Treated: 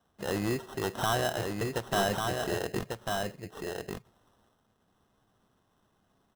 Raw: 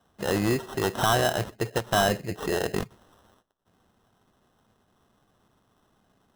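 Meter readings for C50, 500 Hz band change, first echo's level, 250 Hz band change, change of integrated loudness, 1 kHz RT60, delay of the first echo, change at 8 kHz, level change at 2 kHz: no reverb audible, −4.5 dB, −4.0 dB, −4.5 dB, −6.0 dB, no reverb audible, 1,145 ms, −4.5 dB, −4.5 dB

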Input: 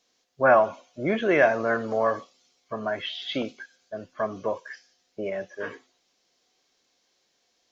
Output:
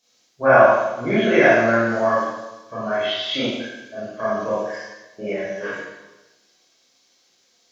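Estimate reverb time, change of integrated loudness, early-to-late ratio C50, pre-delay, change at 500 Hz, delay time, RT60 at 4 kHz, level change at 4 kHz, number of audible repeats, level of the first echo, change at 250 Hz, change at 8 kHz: 1.1 s, +6.5 dB, −1.5 dB, 25 ms, +6.0 dB, no echo audible, 0.90 s, +8.5 dB, no echo audible, no echo audible, +7.5 dB, can't be measured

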